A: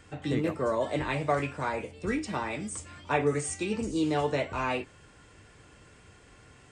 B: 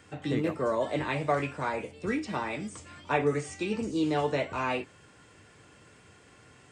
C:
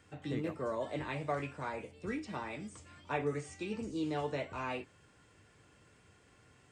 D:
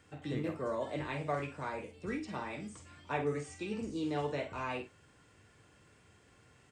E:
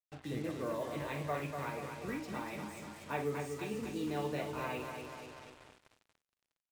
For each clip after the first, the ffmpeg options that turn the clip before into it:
-filter_complex "[0:a]highpass=99,acrossover=split=6200[s0][s1];[s1]acompressor=threshold=0.00141:ratio=4:attack=1:release=60[s2];[s0][s2]amix=inputs=2:normalize=0"
-af "lowshelf=f=68:g=9,volume=0.376"
-filter_complex "[0:a]asplit=2[s0][s1];[s1]adelay=48,volume=0.355[s2];[s0][s2]amix=inputs=2:normalize=0"
-af "aecho=1:1:242|484|726|968|1210|1452|1694|1936:0.501|0.301|0.18|0.108|0.065|0.039|0.0234|0.014,acrusher=bits=7:mix=0:aa=0.5,volume=0.75"

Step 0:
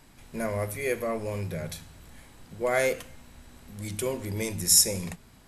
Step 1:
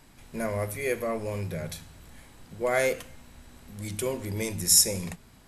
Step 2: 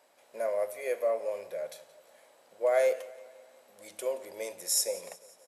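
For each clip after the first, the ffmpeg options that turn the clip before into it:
-af anull
-af "highpass=f=570:t=q:w=4.9,aecho=1:1:175|350|525|700:0.1|0.055|0.0303|0.0166,volume=0.355"

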